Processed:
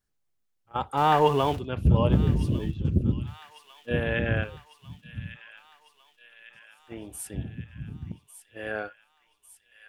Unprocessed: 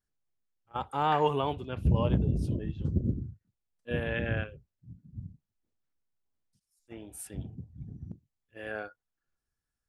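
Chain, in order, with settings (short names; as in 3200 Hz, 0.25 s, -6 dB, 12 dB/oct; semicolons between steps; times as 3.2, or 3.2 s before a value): 0.97–1.59 zero-crossing step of -40.5 dBFS; thin delay 1.15 s, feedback 63%, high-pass 2100 Hz, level -11 dB; gain +5 dB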